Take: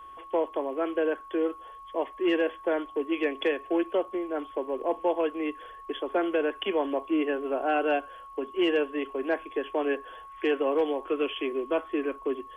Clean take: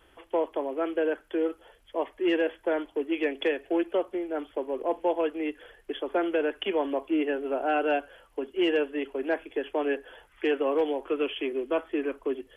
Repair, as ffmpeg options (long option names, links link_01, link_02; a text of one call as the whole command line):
ffmpeg -i in.wav -af "bandreject=frequency=1100:width=30" out.wav